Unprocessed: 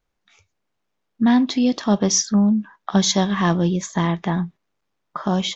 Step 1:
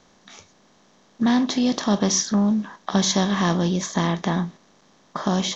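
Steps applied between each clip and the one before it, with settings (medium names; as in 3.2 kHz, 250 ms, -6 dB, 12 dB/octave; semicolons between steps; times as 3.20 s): spectral levelling over time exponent 0.6; trim -4.5 dB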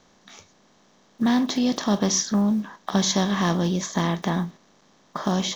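block-companded coder 7-bit; trim -1.5 dB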